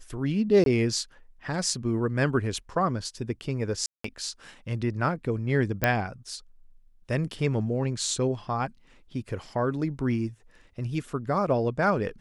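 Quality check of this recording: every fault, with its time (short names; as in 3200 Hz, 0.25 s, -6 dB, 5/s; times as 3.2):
0.64–0.66 gap 22 ms
3.86–4.04 gap 0.184 s
5.84 pop -8 dBFS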